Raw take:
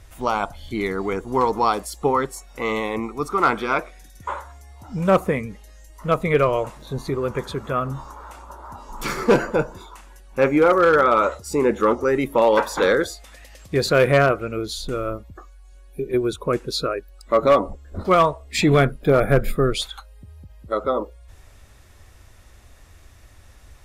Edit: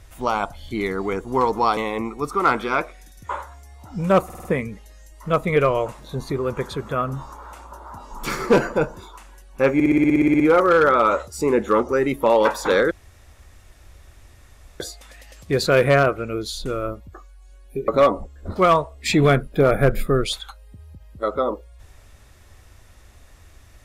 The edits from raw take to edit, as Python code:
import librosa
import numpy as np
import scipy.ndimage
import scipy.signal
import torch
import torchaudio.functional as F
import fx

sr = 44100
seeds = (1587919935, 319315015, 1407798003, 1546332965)

y = fx.edit(x, sr, fx.cut(start_s=1.77, length_s=0.98),
    fx.stutter(start_s=5.23, slice_s=0.05, count=5),
    fx.stutter(start_s=10.52, slice_s=0.06, count=12),
    fx.insert_room_tone(at_s=13.03, length_s=1.89),
    fx.cut(start_s=16.11, length_s=1.26), tone=tone)